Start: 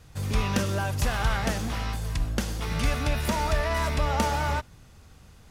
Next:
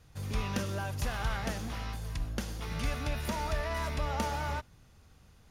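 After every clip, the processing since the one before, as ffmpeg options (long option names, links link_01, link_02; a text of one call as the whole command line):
ffmpeg -i in.wav -af "bandreject=frequency=7900:width=10,volume=-7.5dB" out.wav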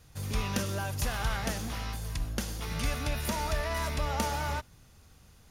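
ffmpeg -i in.wav -af "highshelf=frequency=5300:gain=7.5,volume=1.5dB" out.wav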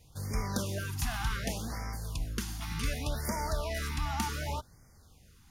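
ffmpeg -i in.wav -af "afftfilt=real='re*(1-between(b*sr/1024,450*pow(3400/450,0.5+0.5*sin(2*PI*0.67*pts/sr))/1.41,450*pow(3400/450,0.5+0.5*sin(2*PI*0.67*pts/sr))*1.41))':imag='im*(1-between(b*sr/1024,450*pow(3400/450,0.5+0.5*sin(2*PI*0.67*pts/sr))/1.41,450*pow(3400/450,0.5+0.5*sin(2*PI*0.67*pts/sr))*1.41))':win_size=1024:overlap=0.75,volume=-1.5dB" out.wav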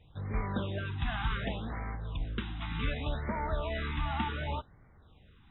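ffmpeg -i in.wav -ar 22050 -c:a aac -b:a 16k out.aac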